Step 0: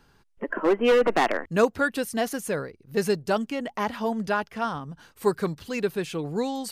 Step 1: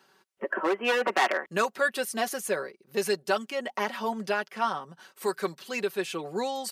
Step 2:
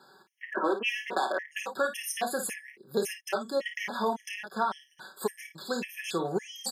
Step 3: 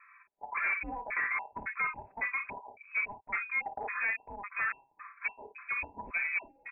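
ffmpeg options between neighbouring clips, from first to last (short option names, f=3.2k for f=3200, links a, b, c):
-filter_complex "[0:a]highpass=360,aecho=1:1:5.3:0.62,acrossover=split=1000[a][b];[a]alimiter=limit=-20dB:level=0:latency=1:release=315[c];[c][b]amix=inputs=2:normalize=0"
-af "acompressor=threshold=-30dB:ratio=6,aecho=1:1:29|54:0.316|0.335,afftfilt=real='re*gt(sin(2*PI*1.8*pts/sr)*(1-2*mod(floor(b*sr/1024/1700),2)),0)':imag='im*gt(sin(2*PI*1.8*pts/sr)*(1-2*mod(floor(b*sr/1024/1700),2)),0)':win_size=1024:overlap=0.75,volume=5.5dB"
-af "asoftclip=type=tanh:threshold=-26dB,lowpass=f=2.3k:t=q:w=0.5098,lowpass=f=2.3k:t=q:w=0.6013,lowpass=f=2.3k:t=q:w=0.9,lowpass=f=2.3k:t=q:w=2.563,afreqshift=-2700"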